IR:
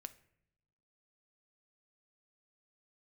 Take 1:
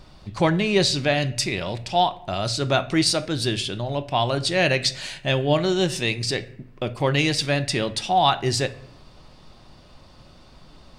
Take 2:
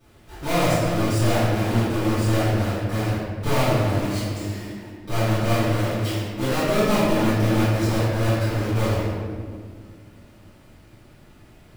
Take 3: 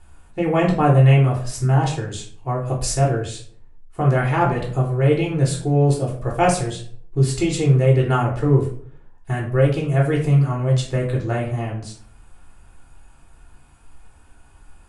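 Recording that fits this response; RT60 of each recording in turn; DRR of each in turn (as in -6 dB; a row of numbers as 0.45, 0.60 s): 1; not exponential, 1.9 s, 0.50 s; 10.5, -18.0, -2.5 dB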